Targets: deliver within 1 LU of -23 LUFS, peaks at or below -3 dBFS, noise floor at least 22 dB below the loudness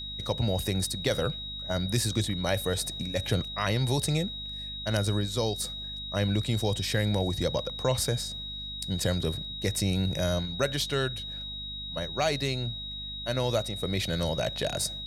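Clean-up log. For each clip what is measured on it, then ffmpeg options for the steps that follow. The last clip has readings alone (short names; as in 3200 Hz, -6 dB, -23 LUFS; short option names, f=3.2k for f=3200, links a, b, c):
hum 50 Hz; harmonics up to 250 Hz; hum level -42 dBFS; steady tone 3800 Hz; tone level -36 dBFS; loudness -29.5 LUFS; peak -12.5 dBFS; loudness target -23.0 LUFS
-> -af "bandreject=f=50:t=h:w=6,bandreject=f=100:t=h:w=6,bandreject=f=150:t=h:w=6,bandreject=f=200:t=h:w=6,bandreject=f=250:t=h:w=6"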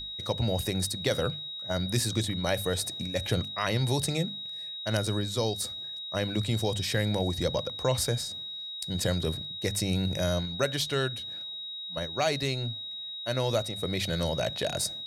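hum none; steady tone 3800 Hz; tone level -36 dBFS
-> -af "bandreject=f=3.8k:w=30"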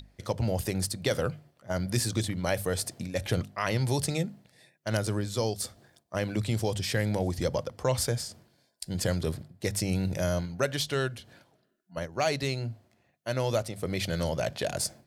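steady tone none; loudness -30.5 LUFS; peak -12.0 dBFS; loudness target -23.0 LUFS
-> -af "volume=7.5dB"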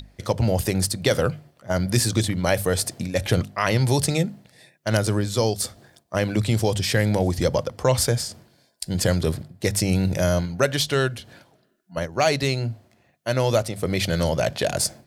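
loudness -23.0 LUFS; peak -4.5 dBFS; noise floor -63 dBFS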